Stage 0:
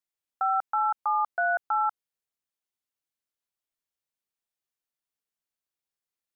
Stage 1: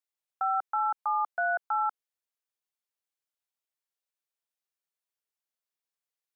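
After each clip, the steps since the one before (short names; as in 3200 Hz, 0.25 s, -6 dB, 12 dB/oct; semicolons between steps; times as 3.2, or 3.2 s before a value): HPF 390 Hz 24 dB/oct; gain -2.5 dB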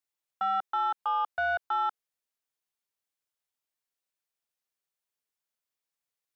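soft clip -22.5 dBFS, distortion -20 dB; gain +1.5 dB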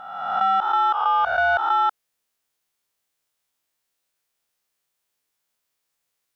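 spectral swells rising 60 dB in 1.23 s; gain +8.5 dB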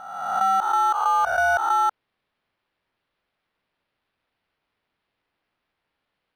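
decimation joined by straight lines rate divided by 6×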